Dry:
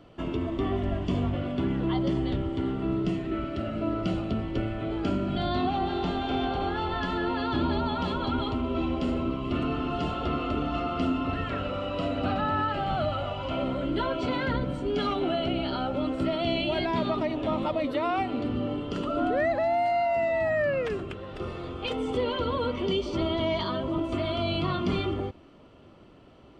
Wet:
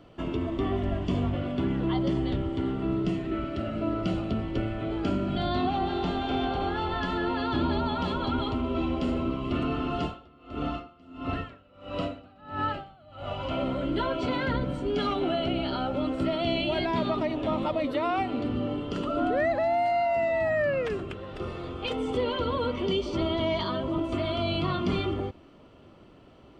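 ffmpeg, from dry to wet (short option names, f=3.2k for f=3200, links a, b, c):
-filter_complex "[0:a]asplit=3[a][b][c];[a]afade=t=out:st=10.05:d=0.02[d];[b]aeval=exprs='val(0)*pow(10,-28*(0.5-0.5*cos(2*PI*1.5*n/s))/20)':c=same,afade=t=in:st=10.05:d=0.02,afade=t=out:st=13.38:d=0.02[e];[c]afade=t=in:st=13.38:d=0.02[f];[d][e][f]amix=inputs=3:normalize=0"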